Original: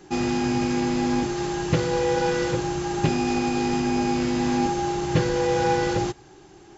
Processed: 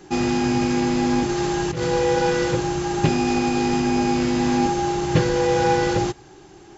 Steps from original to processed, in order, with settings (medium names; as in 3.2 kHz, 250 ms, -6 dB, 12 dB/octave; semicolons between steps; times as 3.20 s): 1.29–1.83 s: compressor with a negative ratio -26 dBFS, ratio -1; trim +3 dB